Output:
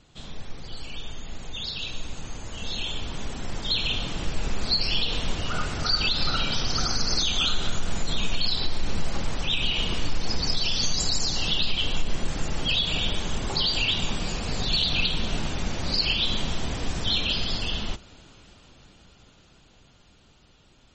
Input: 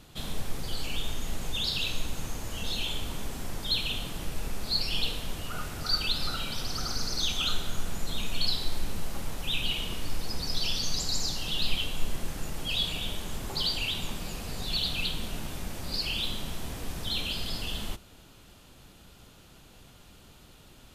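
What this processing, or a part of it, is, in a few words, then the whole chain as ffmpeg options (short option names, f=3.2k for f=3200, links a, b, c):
low-bitrate web radio: -af "dynaudnorm=f=420:g=17:m=16dB,alimiter=limit=-9.5dB:level=0:latency=1:release=96,volume=-4dB" -ar 44100 -c:a libmp3lame -b:a 32k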